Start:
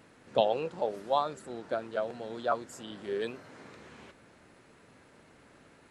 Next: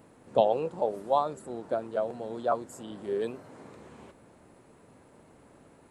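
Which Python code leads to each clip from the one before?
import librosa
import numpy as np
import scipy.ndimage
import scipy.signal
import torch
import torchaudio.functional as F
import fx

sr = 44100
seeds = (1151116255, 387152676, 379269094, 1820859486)

y = fx.band_shelf(x, sr, hz=2900.0, db=-8.5, octaves=2.5)
y = F.gain(torch.from_numpy(y), 3.0).numpy()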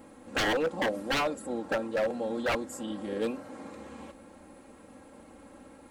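y = x + 0.85 * np.pad(x, (int(3.7 * sr / 1000.0), 0))[:len(x)]
y = 10.0 ** (-24.5 / 20.0) * (np.abs((y / 10.0 ** (-24.5 / 20.0) + 3.0) % 4.0 - 2.0) - 1.0)
y = F.gain(torch.from_numpy(y), 2.5).numpy()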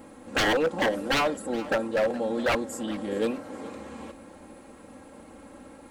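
y = fx.echo_feedback(x, sr, ms=419, feedback_pct=35, wet_db=-17.5)
y = F.gain(torch.from_numpy(y), 4.0).numpy()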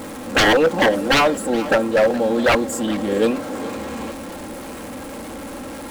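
y = x + 0.5 * 10.0 ** (-39.5 / 20.0) * np.sign(x)
y = F.gain(torch.from_numpy(y), 8.5).numpy()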